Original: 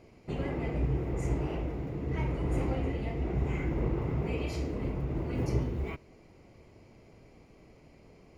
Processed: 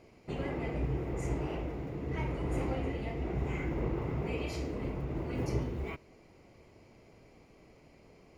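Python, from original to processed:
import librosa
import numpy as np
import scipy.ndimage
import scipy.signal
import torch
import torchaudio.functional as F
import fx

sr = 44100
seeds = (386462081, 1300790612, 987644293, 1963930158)

y = fx.low_shelf(x, sr, hz=280.0, db=-4.5)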